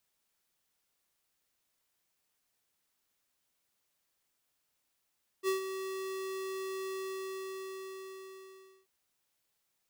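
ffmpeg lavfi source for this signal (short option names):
-f lavfi -i "aevalsrc='0.0355*(2*lt(mod(382*t,1),0.5)-1)':d=3.44:s=44100,afade=t=in:d=0.05,afade=t=out:st=0.05:d=0.123:silence=0.335,afade=t=out:st=1.51:d=1.93"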